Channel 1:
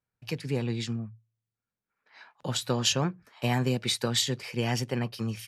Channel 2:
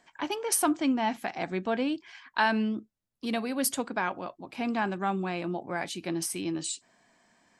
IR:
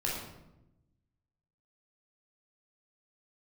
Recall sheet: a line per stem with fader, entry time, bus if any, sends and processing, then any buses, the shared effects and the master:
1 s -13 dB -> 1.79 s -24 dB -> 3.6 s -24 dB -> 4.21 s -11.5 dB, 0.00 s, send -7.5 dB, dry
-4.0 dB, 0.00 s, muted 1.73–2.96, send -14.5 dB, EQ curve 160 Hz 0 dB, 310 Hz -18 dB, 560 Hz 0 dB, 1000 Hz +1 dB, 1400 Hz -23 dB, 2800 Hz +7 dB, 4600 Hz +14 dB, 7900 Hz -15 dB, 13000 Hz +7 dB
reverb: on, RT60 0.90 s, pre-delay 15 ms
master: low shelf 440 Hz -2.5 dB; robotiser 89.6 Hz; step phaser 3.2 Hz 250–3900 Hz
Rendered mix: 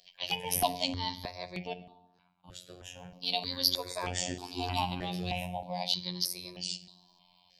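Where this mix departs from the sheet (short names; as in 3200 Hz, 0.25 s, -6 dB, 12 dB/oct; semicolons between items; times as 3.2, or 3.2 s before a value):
stem 1 -13.0 dB -> -6.0 dB; stem 2 -4.0 dB -> +2.0 dB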